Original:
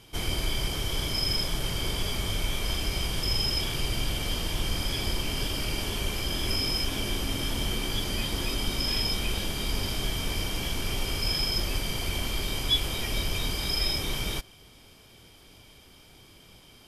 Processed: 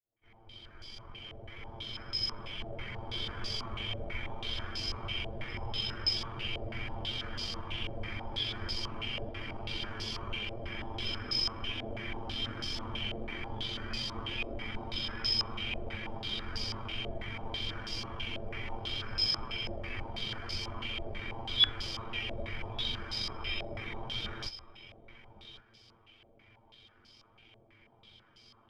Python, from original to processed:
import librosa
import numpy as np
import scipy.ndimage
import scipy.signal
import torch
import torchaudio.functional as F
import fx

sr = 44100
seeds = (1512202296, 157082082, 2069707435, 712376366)

p1 = fx.fade_in_head(x, sr, length_s=2.04)
p2 = fx.stretch_grains(p1, sr, factor=1.7, grain_ms=43.0)
p3 = p2 + fx.echo_single(p2, sr, ms=1119, db=-15.5, dry=0)
p4 = fx.filter_held_lowpass(p3, sr, hz=6.1, low_hz=640.0, high_hz=4900.0)
y = p4 * 10.0 ** (-8.5 / 20.0)